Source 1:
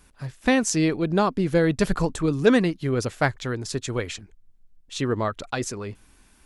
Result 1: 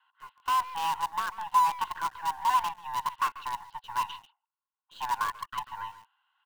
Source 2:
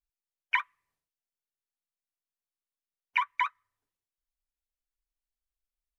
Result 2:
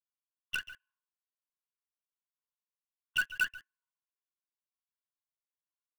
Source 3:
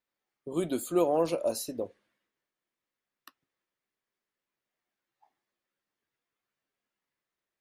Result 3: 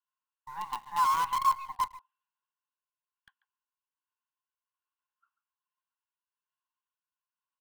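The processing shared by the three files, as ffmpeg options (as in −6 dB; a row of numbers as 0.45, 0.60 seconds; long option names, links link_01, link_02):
-filter_complex "[0:a]highpass=frequency=340:width_type=q:width=0.5412,highpass=frequency=340:width_type=q:width=1.307,lowpass=frequency=3500:width_type=q:width=0.5176,lowpass=frequency=3500:width_type=q:width=0.7071,lowpass=frequency=3500:width_type=q:width=1.932,afreqshift=170,apsyclip=11.5dB,aresample=11025,asoftclip=type=tanh:threshold=-10.5dB,aresample=44100,asplit=3[link_01][link_02][link_03];[link_01]bandpass=frequency=730:width_type=q:width=8,volume=0dB[link_04];[link_02]bandpass=frequency=1090:width_type=q:width=8,volume=-6dB[link_05];[link_03]bandpass=frequency=2440:width_type=q:width=8,volume=-9dB[link_06];[link_04][link_05][link_06]amix=inputs=3:normalize=0,asplit=2[link_07][link_08];[link_08]adelay=140,highpass=300,lowpass=3400,asoftclip=type=hard:threshold=-20dB,volume=-14dB[link_09];[link_07][link_09]amix=inputs=2:normalize=0,tremolo=f=1.2:d=0.39,afreqshift=330,asplit=2[link_10][link_11];[link_11]acrusher=bits=5:dc=4:mix=0:aa=0.000001,volume=-3dB[link_12];[link_10][link_12]amix=inputs=2:normalize=0,volume=-7dB"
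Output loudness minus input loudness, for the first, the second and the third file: −6.5, −3.5, +1.0 LU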